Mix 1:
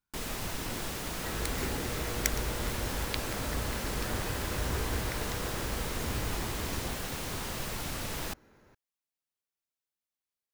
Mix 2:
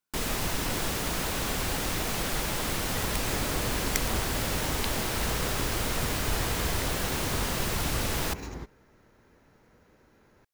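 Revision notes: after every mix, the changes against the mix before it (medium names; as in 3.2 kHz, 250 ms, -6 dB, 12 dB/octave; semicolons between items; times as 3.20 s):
speech: add high-pass 180 Hz; first sound +6.5 dB; second sound: entry +1.70 s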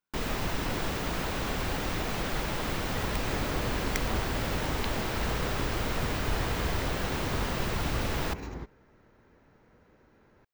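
master: add peaking EQ 11 kHz -12 dB 1.8 oct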